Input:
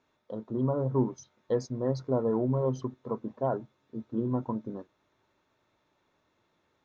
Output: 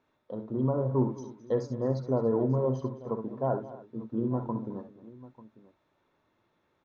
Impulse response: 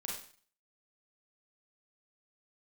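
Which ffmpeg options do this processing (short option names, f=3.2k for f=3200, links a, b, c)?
-af "lowpass=f=2.8k:p=1,aecho=1:1:61|70|215|287|893:0.266|0.211|0.141|0.106|0.112"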